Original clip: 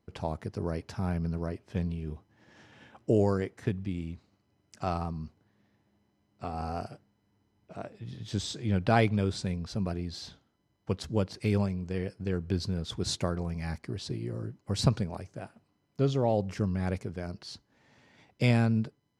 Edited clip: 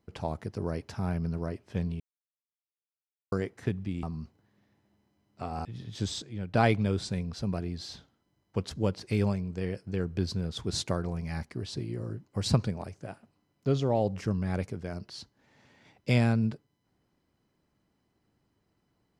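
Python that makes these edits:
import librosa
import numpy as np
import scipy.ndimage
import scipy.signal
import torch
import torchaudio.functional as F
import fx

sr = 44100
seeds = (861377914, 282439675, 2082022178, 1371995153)

y = fx.edit(x, sr, fx.silence(start_s=2.0, length_s=1.32),
    fx.cut(start_s=4.03, length_s=1.02),
    fx.cut(start_s=6.67, length_s=1.31),
    fx.clip_gain(start_s=8.55, length_s=0.32, db=-8.5), tone=tone)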